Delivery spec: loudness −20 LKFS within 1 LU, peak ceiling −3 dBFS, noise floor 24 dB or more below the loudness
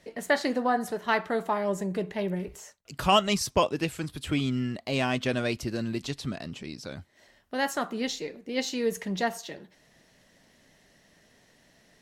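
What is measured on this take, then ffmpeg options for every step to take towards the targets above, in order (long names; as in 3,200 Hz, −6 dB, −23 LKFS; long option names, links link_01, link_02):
integrated loudness −29.0 LKFS; sample peak −10.0 dBFS; target loudness −20.0 LKFS
→ -af "volume=9dB,alimiter=limit=-3dB:level=0:latency=1"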